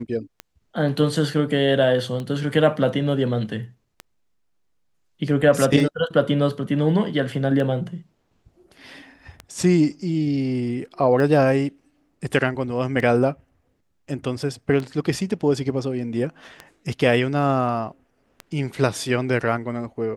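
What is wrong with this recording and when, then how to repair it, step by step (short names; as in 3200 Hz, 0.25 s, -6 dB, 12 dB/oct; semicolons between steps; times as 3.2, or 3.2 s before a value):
tick 33 1/3 rpm -17 dBFS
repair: de-click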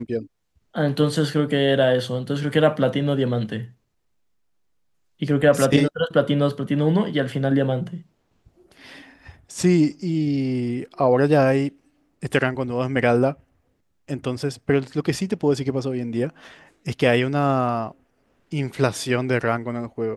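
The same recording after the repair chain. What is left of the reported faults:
none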